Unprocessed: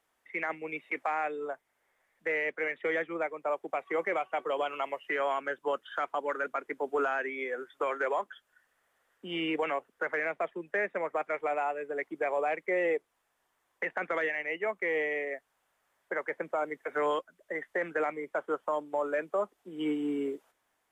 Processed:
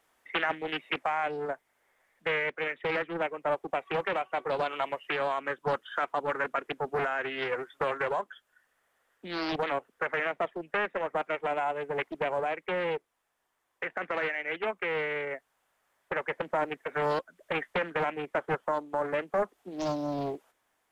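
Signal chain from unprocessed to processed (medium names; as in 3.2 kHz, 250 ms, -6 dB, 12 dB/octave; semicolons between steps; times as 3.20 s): gain riding 0.5 s; loudspeaker Doppler distortion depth 0.88 ms; trim +1.5 dB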